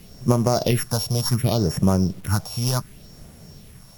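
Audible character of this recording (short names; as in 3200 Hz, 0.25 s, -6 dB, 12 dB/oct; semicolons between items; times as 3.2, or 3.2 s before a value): a buzz of ramps at a fixed pitch in blocks of 8 samples; phasing stages 4, 0.68 Hz, lowest notch 290–4200 Hz; a quantiser's noise floor 8-bit, dither none; AAC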